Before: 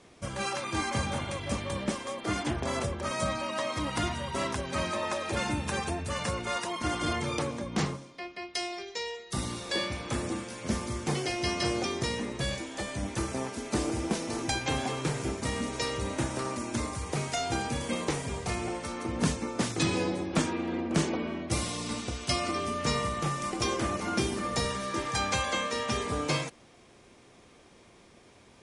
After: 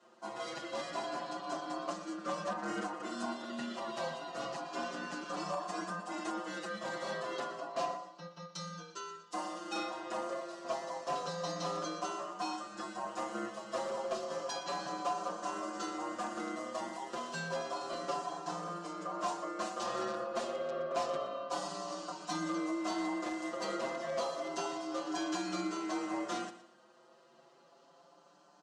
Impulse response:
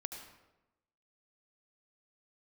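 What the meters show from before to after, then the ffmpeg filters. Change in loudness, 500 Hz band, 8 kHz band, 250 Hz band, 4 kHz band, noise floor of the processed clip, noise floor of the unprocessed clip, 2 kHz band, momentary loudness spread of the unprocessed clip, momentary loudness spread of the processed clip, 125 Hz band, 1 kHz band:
-7.0 dB, -4.5 dB, -11.0 dB, -8.0 dB, -10.0 dB, -63 dBFS, -57 dBFS, -9.0 dB, 5 LU, 5 LU, -19.0 dB, -3.5 dB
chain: -filter_complex "[0:a]bandreject=f=2.6k:w=5.1,aecho=1:1:5.9:0.96,aeval=exprs='val(0)*sin(2*PI*870*n/s)':c=same,asplit=2[a][b];[b]aeval=exprs='(mod(10*val(0)+1,2)-1)/10':c=same,volume=-4.5dB[c];[a][c]amix=inputs=2:normalize=0,highpass=f=160:w=0.5412,highpass=f=160:w=1.3066,equalizer=f=220:t=q:w=4:g=5,equalizer=f=330:t=q:w=4:g=5,equalizer=f=620:t=q:w=4:g=6,equalizer=f=880:t=q:w=4:g=6,equalizer=f=2.2k:t=q:w=4:g=-10,lowpass=f=7.5k:w=0.5412,lowpass=f=7.5k:w=1.3066,asplit=2[d][e];[e]aecho=0:1:119|238|357:0.188|0.0584|0.0181[f];[d][f]amix=inputs=2:normalize=0,asoftclip=type=tanh:threshold=-12dB,asplit=2[g][h];[h]adelay=5.9,afreqshift=0.3[i];[g][i]amix=inputs=2:normalize=1,volume=-9dB"

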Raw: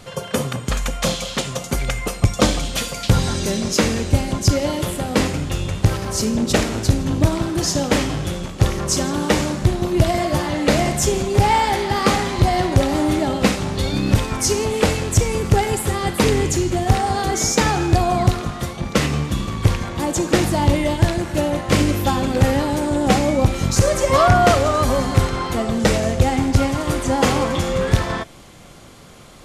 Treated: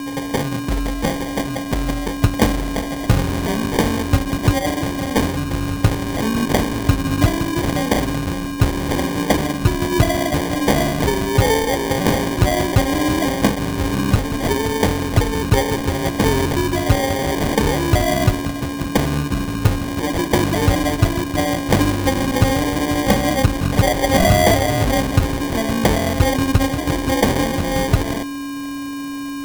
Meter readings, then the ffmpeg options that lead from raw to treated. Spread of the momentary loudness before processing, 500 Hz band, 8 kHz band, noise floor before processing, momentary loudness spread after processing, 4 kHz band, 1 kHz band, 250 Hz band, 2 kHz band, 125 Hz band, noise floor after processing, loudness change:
6 LU, 0.0 dB, -3.5 dB, -34 dBFS, 6 LU, 0.0 dB, -1.0 dB, +2.0 dB, +2.0 dB, 0.0 dB, -27 dBFS, +0.5 dB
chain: -af "aeval=exprs='val(0)+0.0631*sin(2*PI*6400*n/s)':c=same,acrusher=samples=33:mix=1:aa=0.000001"

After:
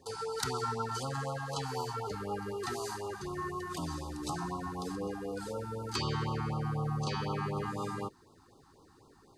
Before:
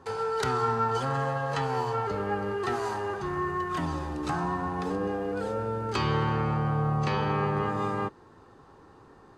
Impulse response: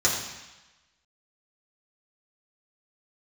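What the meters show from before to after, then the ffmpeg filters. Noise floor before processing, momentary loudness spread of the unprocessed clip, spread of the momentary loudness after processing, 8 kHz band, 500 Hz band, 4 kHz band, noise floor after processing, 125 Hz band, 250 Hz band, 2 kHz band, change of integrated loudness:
-54 dBFS, 5 LU, 5 LU, +4.0 dB, -8.0 dB, -1.0 dB, -61 dBFS, -6.5 dB, -6.5 dB, -9.0 dB, -7.5 dB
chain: -af "aexciter=amount=2.7:drive=7:freq=4k,afftfilt=real='re*(1-between(b*sr/1024,480*pow(2000/480,0.5+0.5*sin(2*PI*4*pts/sr))/1.41,480*pow(2000/480,0.5+0.5*sin(2*PI*4*pts/sr))*1.41))':imag='im*(1-between(b*sr/1024,480*pow(2000/480,0.5+0.5*sin(2*PI*4*pts/sr))/1.41,480*pow(2000/480,0.5+0.5*sin(2*PI*4*pts/sr))*1.41))':win_size=1024:overlap=0.75,volume=-6.5dB"

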